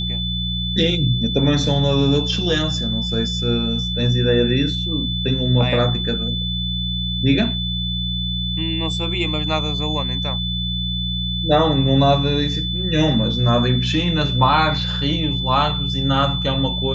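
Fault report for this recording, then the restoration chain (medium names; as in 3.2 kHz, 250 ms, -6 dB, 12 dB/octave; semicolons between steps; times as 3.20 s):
hum 60 Hz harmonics 3 -25 dBFS
whine 3.5 kHz -24 dBFS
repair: de-hum 60 Hz, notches 3; band-stop 3.5 kHz, Q 30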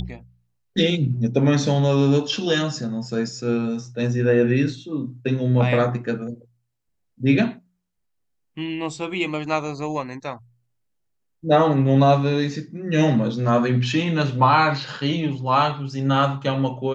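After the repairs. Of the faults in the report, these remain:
nothing left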